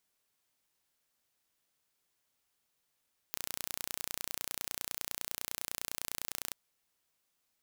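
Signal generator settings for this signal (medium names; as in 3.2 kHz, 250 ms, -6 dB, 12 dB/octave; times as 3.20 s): pulse train 29.9 per s, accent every 0, -9.5 dBFS 3.20 s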